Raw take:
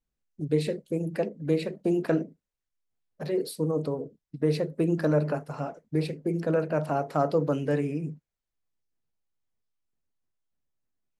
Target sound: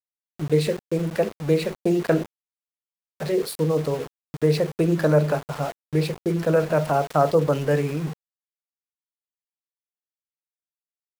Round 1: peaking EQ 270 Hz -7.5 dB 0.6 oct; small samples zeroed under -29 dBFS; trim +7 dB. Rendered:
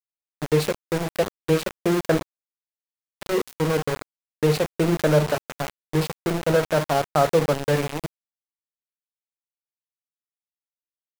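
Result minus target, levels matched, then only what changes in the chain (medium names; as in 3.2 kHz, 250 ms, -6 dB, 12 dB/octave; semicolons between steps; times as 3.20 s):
small samples zeroed: distortion +13 dB
change: small samples zeroed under -39.5 dBFS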